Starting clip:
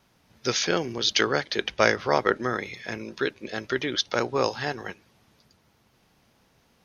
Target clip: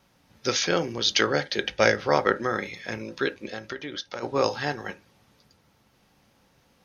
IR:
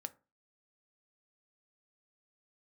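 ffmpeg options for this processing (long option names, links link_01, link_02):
-filter_complex "[0:a]asettb=1/sr,asplit=3[link_01][link_02][link_03];[link_01]atrim=end=1.304[link_04];[link_02]atrim=start=1.3:end=2.08,asetpts=PTS-STARTPTS,afade=type=in:duration=0.004:curve=qsin,afade=type=out:start_time=0.776:duration=0.004:curve=qsin,equalizer=frequency=1100:width_type=o:width=0.37:gain=-7.5[link_05];[link_03]atrim=start=2.076[link_06];[link_04][link_05]acrossfade=duration=0.004:curve1=hsin:curve2=qsin[link_07];[link_07][link_06]acrossfade=duration=0.004:curve1=qsin:curve2=hsin,asplit=3[link_08][link_09][link_10];[link_08]afade=type=out:start_time=3.48:duration=0.02[link_11];[link_09]acompressor=threshold=-32dB:ratio=8,afade=type=in:start_time=3.48:duration=0.02,afade=type=out:start_time=4.22:duration=0.02[link_12];[link_10]afade=type=in:start_time=4.22:duration=0.02[link_13];[link_11][link_12][link_13]amix=inputs=3:normalize=0[link_14];[1:a]atrim=start_sample=2205,atrim=end_sample=3528[link_15];[link_14][link_15]afir=irnorm=-1:irlink=0,volume=4dB"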